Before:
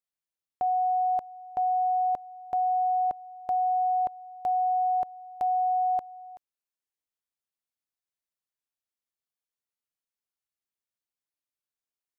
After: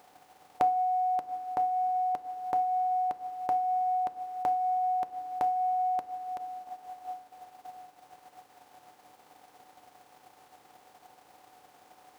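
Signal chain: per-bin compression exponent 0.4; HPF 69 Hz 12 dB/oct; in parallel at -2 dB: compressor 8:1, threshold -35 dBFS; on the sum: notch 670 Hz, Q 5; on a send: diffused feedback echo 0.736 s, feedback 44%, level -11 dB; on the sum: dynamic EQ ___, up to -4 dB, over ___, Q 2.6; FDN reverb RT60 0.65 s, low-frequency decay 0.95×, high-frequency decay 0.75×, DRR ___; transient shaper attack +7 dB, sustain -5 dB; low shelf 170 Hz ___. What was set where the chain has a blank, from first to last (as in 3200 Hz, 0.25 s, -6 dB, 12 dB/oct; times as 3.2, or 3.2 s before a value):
760 Hz, -40 dBFS, 7.5 dB, -7.5 dB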